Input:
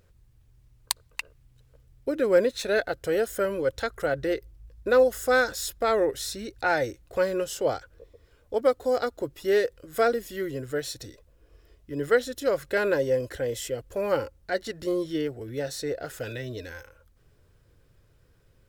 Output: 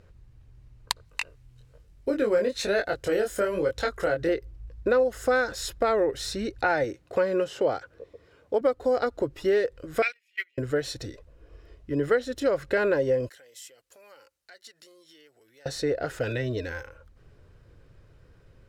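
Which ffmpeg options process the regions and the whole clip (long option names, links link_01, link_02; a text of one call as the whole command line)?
ffmpeg -i in.wav -filter_complex "[0:a]asettb=1/sr,asplit=3[link_01][link_02][link_03];[link_01]atrim=end=1.054[link_04];[link_02]atrim=start=1.05:end=4.29,asetpts=PTS-STARTPTS,afade=type=in:duration=0.004:curve=qsin,afade=type=out:start_time=3.236:duration=0.004:curve=qsin,highshelf=frequency=4100:gain=9,flanger=delay=19.5:depth=4.8:speed=1.1[link_05];[link_03]atrim=start=4.286[link_06];[link_04][link_05]acrossfade=duration=0.004:curve1=hsin:curve2=qsin[link_07];[link_07][link_06]acrossfade=duration=0.004:curve1=qsin:curve2=hsin,asettb=1/sr,asplit=3[link_08][link_09][link_10];[link_08]atrim=end=6.844[link_11];[link_09]atrim=start=6.84:end=8.61,asetpts=PTS-STARTPTS,afade=type=in:duration=0.004:curve=qsin,afade=type=out:start_time=1.766:duration=0.004:curve=qsin,highpass=130,acrossover=split=3700[link_12][link_13];[link_13]acompressor=threshold=-45dB:ratio=4:attack=1:release=60[link_14];[link_12][link_14]amix=inputs=2:normalize=0[link_15];[link_10]atrim=start=8.606[link_16];[link_11][link_15]acrossfade=duration=0.004:curve1=hsin:curve2=qsin[link_17];[link_17][link_16]acrossfade=duration=0.004:curve1=qsin:curve2=hsin,asettb=1/sr,asplit=3[link_18][link_19][link_20];[link_18]atrim=end=10.024[link_21];[link_19]atrim=start=10.02:end=10.58,asetpts=PTS-STARTPTS,afade=type=in:duration=0.004:curve=qsin,afade=type=out:start_time=0.556:duration=0.004:curve=qsin,highpass=frequency=2400:width_type=q:width=12,agate=range=-31dB:threshold=-35dB:ratio=16:release=100:detection=peak[link_22];[link_20]atrim=start=10.576[link_23];[link_21][link_22]acrossfade=duration=0.004:curve1=hsin:curve2=qsin[link_24];[link_24][link_23]acrossfade=duration=0.004:curve1=qsin:curve2=hsin,asettb=1/sr,asplit=3[link_25][link_26][link_27];[link_25]atrim=end=13.294[link_28];[link_26]atrim=start=13.29:end=15.66,asetpts=PTS-STARTPTS,afade=type=in:duration=0.004:curve=qsin,afade=type=out:start_time=2.366:duration=0.004:curve=qsin,acompressor=threshold=-39dB:ratio=3:attack=3.2:release=140:knee=1:detection=peak,aderivative[link_29];[link_27]atrim=start=15.656[link_30];[link_28][link_29]acrossfade=duration=0.004:curve1=hsin:curve2=qsin[link_31];[link_31][link_30]acrossfade=duration=0.004:curve1=qsin:curve2=hsin,aemphasis=mode=reproduction:type=50fm,bandreject=frequency=3400:width=25,acompressor=threshold=-28dB:ratio=3,volume=6dB" out.wav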